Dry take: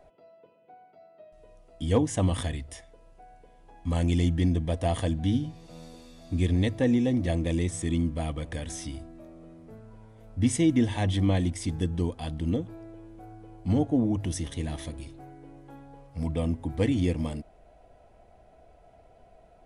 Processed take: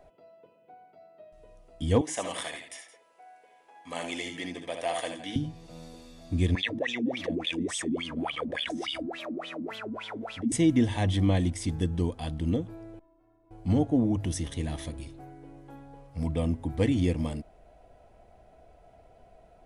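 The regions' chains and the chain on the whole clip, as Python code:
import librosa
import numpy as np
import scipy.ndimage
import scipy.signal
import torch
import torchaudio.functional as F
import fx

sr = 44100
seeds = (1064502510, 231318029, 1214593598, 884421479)

y = fx.chain(x, sr, fx.highpass(hz=560.0, slope=12),
    fx.peak_eq(hz=2200.0, db=5.5, octaves=0.49),
    fx.echo_multitap(ms=(66, 78, 168), db=(-8.5, -10.0, -14.5)), at=(2.01, 5.36))
y = fx.chain(y, sr, fx.high_shelf(hz=3000.0, db=11.0),
    fx.wah_lfo(hz=3.5, low_hz=220.0, high_hz=3500.0, q=11.0),
    fx.env_flatten(amount_pct=70), at=(6.55, 10.52))
y = fx.chain(y, sr, fx.lower_of_two(delay_ms=7.8),
    fx.lowpass(hz=1100.0, slope=6),
    fx.stiff_resonator(f0_hz=320.0, decay_s=0.21, stiffness=0.008), at=(12.99, 13.51))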